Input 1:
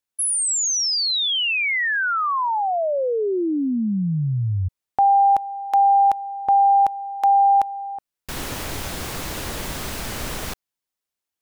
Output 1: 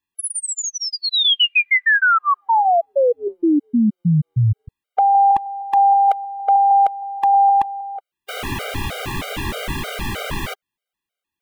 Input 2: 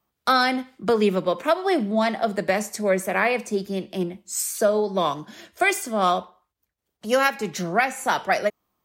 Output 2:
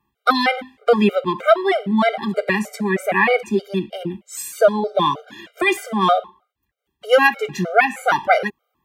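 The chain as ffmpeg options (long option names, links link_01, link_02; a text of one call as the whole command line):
ffmpeg -i in.wav -af "highshelf=frequency=4000:width_type=q:width=1.5:gain=-7,afftfilt=real='re*gt(sin(2*PI*3.2*pts/sr)*(1-2*mod(floor(b*sr/1024/400),2)),0)':imag='im*gt(sin(2*PI*3.2*pts/sr)*(1-2*mod(floor(b*sr/1024/400),2)),0)':win_size=1024:overlap=0.75,volume=7.5dB" out.wav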